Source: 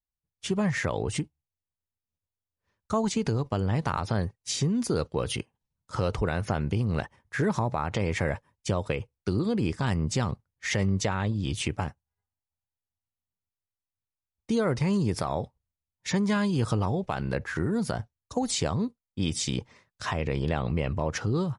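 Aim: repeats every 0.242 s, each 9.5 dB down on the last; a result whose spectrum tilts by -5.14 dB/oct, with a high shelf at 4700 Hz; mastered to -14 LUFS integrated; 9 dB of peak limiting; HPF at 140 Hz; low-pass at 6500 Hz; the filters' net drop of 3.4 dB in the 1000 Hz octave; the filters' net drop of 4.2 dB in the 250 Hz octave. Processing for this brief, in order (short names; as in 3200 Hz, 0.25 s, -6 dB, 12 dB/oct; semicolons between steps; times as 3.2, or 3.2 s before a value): HPF 140 Hz; LPF 6500 Hz; bell 250 Hz -4.5 dB; bell 1000 Hz -4 dB; high shelf 4700 Hz -3 dB; limiter -23.5 dBFS; feedback echo 0.242 s, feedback 33%, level -9.5 dB; gain +20.5 dB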